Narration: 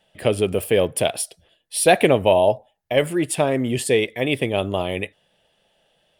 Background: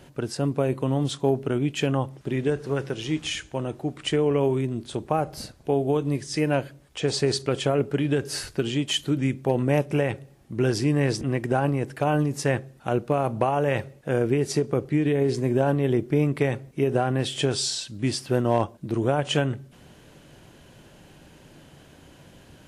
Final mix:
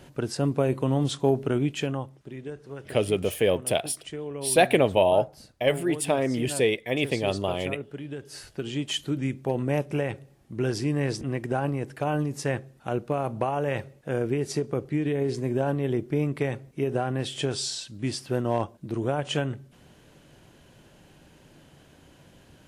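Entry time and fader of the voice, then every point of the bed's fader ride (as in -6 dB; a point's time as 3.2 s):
2.70 s, -4.5 dB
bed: 1.61 s 0 dB
2.33 s -13 dB
8.25 s -13 dB
8.8 s -4 dB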